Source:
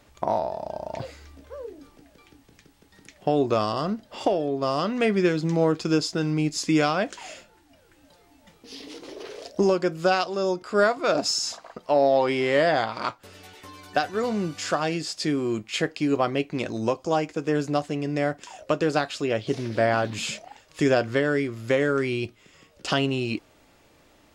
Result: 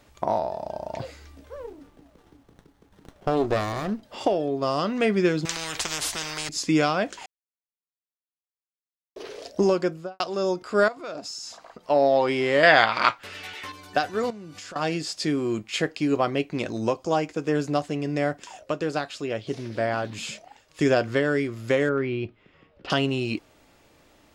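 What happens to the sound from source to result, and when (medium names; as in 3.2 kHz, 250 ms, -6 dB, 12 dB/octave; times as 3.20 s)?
1.56–4.03 s: sliding maximum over 17 samples
5.45–6.49 s: spectrum-flattening compressor 10:1
7.26–9.16 s: mute
9.80–10.20 s: studio fade out
10.88–11.90 s: compression 2:1, threshold -42 dBFS
12.63–13.72 s: peaking EQ 2.2 kHz +13.5 dB 2.3 oct
14.30–14.76 s: compression 12:1, threshold -37 dBFS
18.59–20.81 s: gain -4 dB
21.89–22.90 s: distance through air 360 m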